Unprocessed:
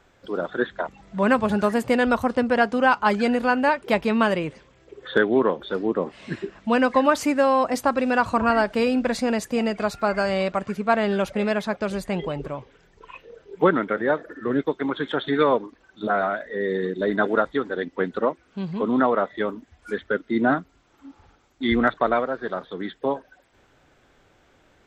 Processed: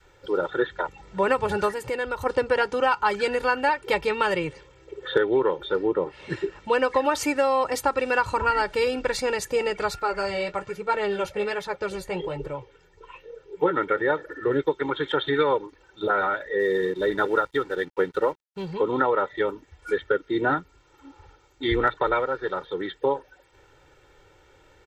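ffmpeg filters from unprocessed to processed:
-filter_complex "[0:a]asplit=3[a][b][c];[a]afade=t=out:st=1.71:d=0.02[d];[b]acompressor=threshold=-29dB:ratio=2.5:attack=3.2:release=140:knee=1:detection=peak,afade=t=in:st=1.71:d=0.02,afade=t=out:st=2.25:d=0.02[e];[c]afade=t=in:st=2.25:d=0.02[f];[d][e][f]amix=inputs=3:normalize=0,asettb=1/sr,asplit=3[g][h][i];[g]atrim=end=5.674[j];[h]atrim=start=5.67:end=6.3,asetpts=PTS-STARTPTS,afade=t=in:d=0.004:c=qsin,afade=t=out:st=0.626:d=0.004:c=qsin,lowpass=f=3.4k:p=1[k];[i]atrim=start=6.296[l];[j][k]acrossfade=d=0.004:c1=hsin:c2=qsin[m];[m][l]acrossfade=d=0.004:c1=qsin:c2=hsin,asettb=1/sr,asplit=3[n][o][p];[n]atrim=end=9.994[q];[o]atrim=start=9.99:end=13.77,asetpts=PTS-STARTPTS,afade=t=in:d=0.004:c=qsin,afade=t=out:st=3.776:d=0.004:c=qsin,flanger=delay=5.9:depth=6.7:regen=-38:speed=1.2:shape=triangular[r];[p]atrim=start=13.766[s];[q][r]acrossfade=d=0.004:c1=hsin:c2=qsin[t];[t][s]acrossfade=d=0.004:c1=qsin:c2=hsin,asettb=1/sr,asplit=3[u][v][w];[u]atrim=end=16.594[x];[v]atrim=start=16.59:end=18.74,asetpts=PTS-STARTPTS,afade=t=in:d=0.004:c=qsin,afade=t=out:st=2.146:d=0.004:c=qsin,aeval=exprs='sgn(val(0))*max(abs(val(0))-0.00335,0)':c=same[y];[w]atrim=start=18.736[z];[x][y]acrossfade=d=0.004:c1=hsin:c2=qsin[aa];[aa][z]acrossfade=d=0.004:c1=qsin:c2=hsin,adynamicequalizer=threshold=0.0251:dfrequency=490:dqfactor=0.83:tfrequency=490:tqfactor=0.83:attack=5:release=100:ratio=0.375:range=2.5:mode=cutabove:tftype=bell,aecho=1:1:2.2:0.87,acompressor=threshold=-17dB:ratio=6"

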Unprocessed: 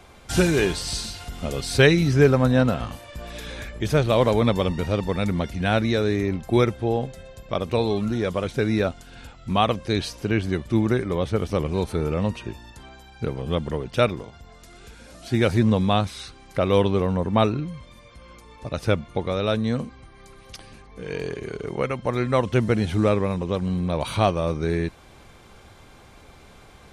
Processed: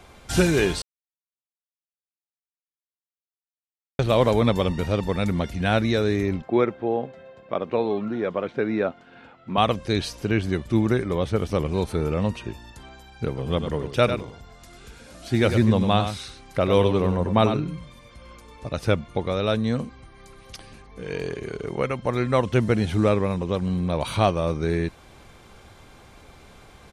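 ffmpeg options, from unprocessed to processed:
-filter_complex "[0:a]asettb=1/sr,asplit=3[a][b][c];[a]atrim=end=6.424[d];[b]atrim=start=6.42:end=9.58,asetpts=PTS-STARTPTS,afade=t=in:d=0.004:c=qsin,afade=t=out:st=3.156:d=0.004:c=qsin,highpass=220,lowpass=2.1k[e];[c]atrim=start=9.576[f];[d][e]acrossfade=d=0.004:c1=hsin:c2=qsin[g];[g][f]acrossfade=d=0.004:c1=qsin:c2=hsin,asplit=3[h][i][j];[h]afade=t=out:st=13.37:d=0.02[k];[i]aecho=1:1:99:0.376,afade=t=in:st=13.37:d=0.02,afade=t=out:st=18.66:d=0.02[l];[j]afade=t=in:st=18.66:d=0.02[m];[k][l][m]amix=inputs=3:normalize=0,asplit=3[n][o][p];[n]atrim=end=0.82,asetpts=PTS-STARTPTS,afade=t=out:st=0.816:d=0.004:c=hsin[q];[o]atrim=start=0.82:end=3.99,asetpts=PTS-STARTPTS,volume=0[r];[p]atrim=start=3.99,asetpts=PTS-STARTPTS,afade=t=in:d=0.004:c=hsin[s];[q][r][s]concat=n=3:v=0:a=1"

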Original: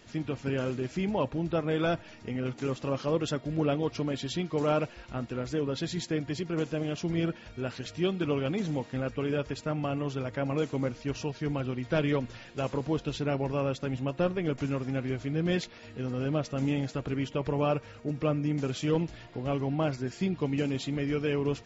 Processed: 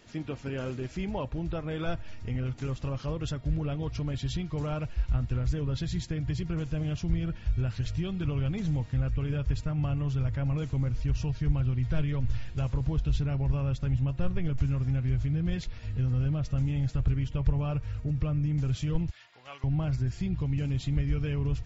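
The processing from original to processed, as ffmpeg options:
-filter_complex "[0:a]asettb=1/sr,asplit=3[a][b][c];[a]atrim=end=19.104[d];[b]atrim=start=19.1:end=19.64,asetpts=PTS-STARTPTS,afade=t=in:d=0.004:c=qsin,afade=t=out:st=0.536:d=0.004:c=qsin,highpass=1.1k[e];[c]atrim=start=19.636[f];[d][e]acrossfade=d=0.004:c1=hsin:c2=qsin[g];[g][f]acrossfade=d=0.004:c1=qsin:c2=hsin,asubboost=boost=4:cutoff=200,alimiter=limit=-20.5dB:level=0:latency=1:release=149,asubboost=boost=7.5:cutoff=80,volume=-2dB"

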